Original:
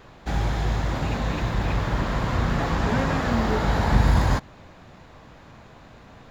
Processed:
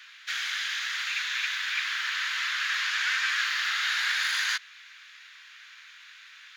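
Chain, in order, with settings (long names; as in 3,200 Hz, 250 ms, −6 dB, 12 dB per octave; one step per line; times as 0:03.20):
wrong playback speed 25 fps video run at 24 fps
Butterworth high-pass 1,500 Hz 36 dB per octave
parametric band 3,100 Hz +7.5 dB 2.5 octaves
level +2 dB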